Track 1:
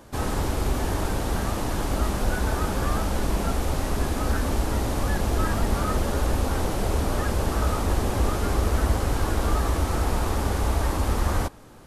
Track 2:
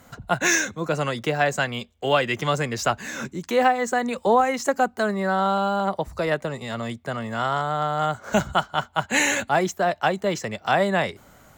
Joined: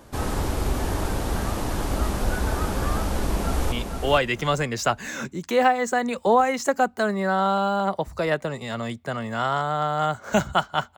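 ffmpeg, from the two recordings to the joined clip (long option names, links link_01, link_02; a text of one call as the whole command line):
ffmpeg -i cue0.wav -i cue1.wav -filter_complex "[0:a]apad=whole_dur=10.97,atrim=end=10.97,atrim=end=3.722[link_01];[1:a]atrim=start=1.718:end=8.97[link_02];[link_01][link_02]acrossfade=duration=0.004:curve1=hsin:curve2=hsin,asplit=2[link_03][link_04];[link_04]afade=type=in:start_time=3.06:duration=0.01,afade=type=out:start_time=3.72:duration=0.01,aecho=0:1:460|920|1380:0.501187|0.100237|0.0200475[link_05];[link_03][link_05]amix=inputs=2:normalize=0" out.wav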